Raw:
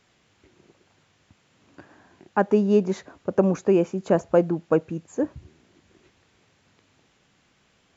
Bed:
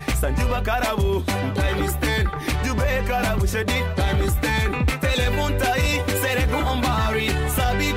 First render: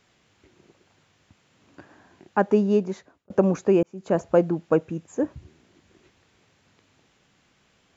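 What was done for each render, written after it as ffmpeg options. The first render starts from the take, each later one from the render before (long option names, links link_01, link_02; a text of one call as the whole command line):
ffmpeg -i in.wav -filter_complex "[0:a]asettb=1/sr,asplit=3[link_01][link_02][link_03];[link_01]atrim=end=4.754[link_04];[link_02]atrim=start=4.75:end=5.3,asetpts=PTS-STARTPTS,afade=type=in:duration=0.004:curve=qsin,afade=type=out:start_time=0.546:duration=0.004:curve=qsin,bandreject=frequency=4400:width=12[link_05];[link_03]atrim=start=5.296[link_06];[link_04][link_05]acrossfade=duration=0.004:curve1=hsin:curve2=qsin[link_07];[link_07][link_06]acrossfade=duration=0.004:curve1=qsin:curve2=hsin,asplit=3[link_08][link_09][link_10];[link_08]atrim=end=3.3,asetpts=PTS-STARTPTS,afade=type=out:start_time=2.62:duration=0.68[link_11];[link_09]atrim=start=3.3:end=3.83,asetpts=PTS-STARTPTS,afade=type=in:duration=0.004:curve=hsin,afade=type=out:start_time=0.526:duration=0.004:curve=hsin[link_12];[link_10]atrim=start=3.83,asetpts=PTS-STARTPTS,afade=type=in:duration=0.4[link_13];[link_11][link_12][link_13]concat=n=3:v=0:a=1" out.wav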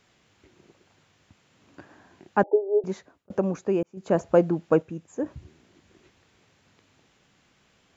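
ffmpeg -i in.wav -filter_complex "[0:a]asettb=1/sr,asplit=3[link_01][link_02][link_03];[link_01]atrim=end=2.434[link_04];[link_02]atrim=start=2.43:end=2.84,asetpts=PTS-STARTPTS,afade=type=in:duration=0.004:curve=qsin,afade=type=out:start_time=0.406:duration=0.004:curve=qsin,asuperpass=centerf=520:order=20:qfactor=0.9[link_05];[link_03]atrim=start=2.836[link_06];[link_04][link_05]acrossfade=duration=0.004:curve1=hsin:curve2=qsin[link_07];[link_07][link_06]acrossfade=duration=0.004:curve1=qsin:curve2=hsin,asplit=5[link_08][link_09][link_10][link_11][link_12];[link_08]atrim=end=3.382[link_13];[link_09]atrim=start=3.378:end=3.972,asetpts=PTS-STARTPTS,volume=-5.5dB[link_14];[link_10]atrim=start=3.968:end=4.822[link_15];[link_11]atrim=start=4.818:end=5.262,asetpts=PTS-STARTPTS,volume=-4.5dB[link_16];[link_12]atrim=start=5.258[link_17];[link_13][link_14]acrossfade=duration=0.004:curve1=hsin:curve2=hsin[link_18];[link_18][link_15]acrossfade=duration=0.004:curve1=hsin:curve2=hsin[link_19];[link_19][link_16]acrossfade=duration=0.004:curve1=hsin:curve2=hsin[link_20];[link_20][link_17]acrossfade=duration=0.004:curve1=hsin:curve2=hsin" out.wav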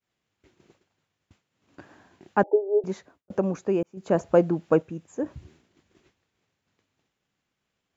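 ffmpeg -i in.wav -af "agate=range=-33dB:threshold=-52dB:ratio=3:detection=peak" out.wav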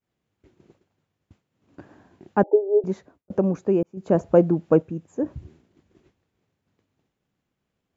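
ffmpeg -i in.wav -af "tiltshelf=frequency=840:gain=5.5" out.wav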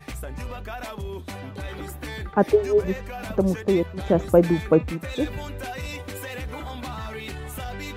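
ffmpeg -i in.wav -i bed.wav -filter_complex "[1:a]volume=-12.5dB[link_01];[0:a][link_01]amix=inputs=2:normalize=0" out.wav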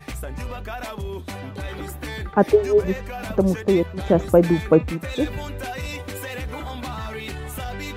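ffmpeg -i in.wav -af "volume=2.5dB,alimiter=limit=-3dB:level=0:latency=1" out.wav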